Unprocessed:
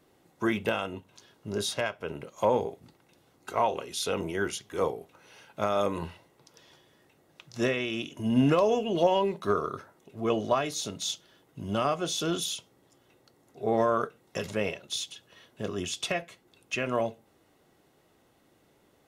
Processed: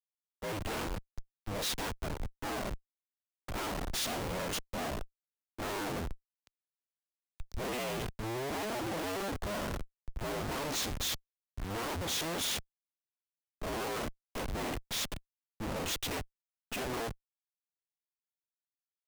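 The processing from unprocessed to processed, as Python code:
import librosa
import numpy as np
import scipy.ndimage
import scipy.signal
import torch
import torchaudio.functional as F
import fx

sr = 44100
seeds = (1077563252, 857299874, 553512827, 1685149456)

y = fx.cycle_switch(x, sr, every=2, mode='inverted')
y = fx.schmitt(y, sr, flips_db=-37.0)
y = fx.band_widen(y, sr, depth_pct=70)
y = y * librosa.db_to_amplitude(-4.5)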